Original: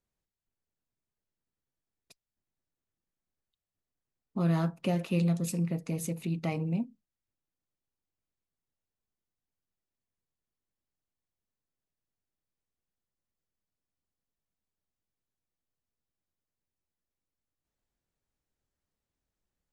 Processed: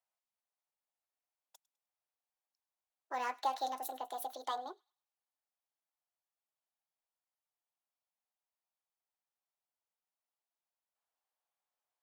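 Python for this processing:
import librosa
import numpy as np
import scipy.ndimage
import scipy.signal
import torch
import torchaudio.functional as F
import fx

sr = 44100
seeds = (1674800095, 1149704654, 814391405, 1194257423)

p1 = fx.speed_glide(x, sr, from_pct=132, to_pct=196)
p2 = fx.ladder_highpass(p1, sr, hz=630.0, resonance_pct=45)
p3 = p2 + fx.echo_wet_highpass(p2, sr, ms=102, feedback_pct=31, hz=1900.0, wet_db=-22, dry=0)
y = p3 * 10.0 ** (4.5 / 20.0)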